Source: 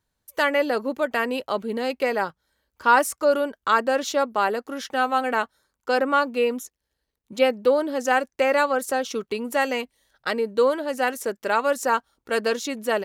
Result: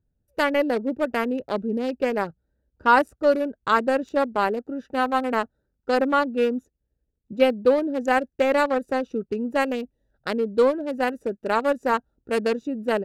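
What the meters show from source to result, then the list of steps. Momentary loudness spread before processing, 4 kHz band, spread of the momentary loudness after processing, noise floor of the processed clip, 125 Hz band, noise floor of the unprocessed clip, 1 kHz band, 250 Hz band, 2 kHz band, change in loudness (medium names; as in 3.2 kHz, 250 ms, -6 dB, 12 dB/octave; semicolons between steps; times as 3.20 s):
8 LU, -3.5 dB, 9 LU, -77 dBFS, no reading, -81 dBFS, -1.0 dB, +4.0 dB, -2.5 dB, 0.0 dB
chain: local Wiener filter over 41 samples; bass shelf 280 Hz +8 dB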